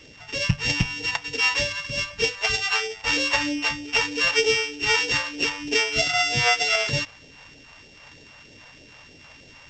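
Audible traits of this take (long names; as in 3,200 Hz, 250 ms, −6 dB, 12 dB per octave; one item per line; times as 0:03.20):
a buzz of ramps at a fixed pitch in blocks of 16 samples
phaser sweep stages 2, 3.2 Hz, lowest notch 310–1,100 Hz
A-law companding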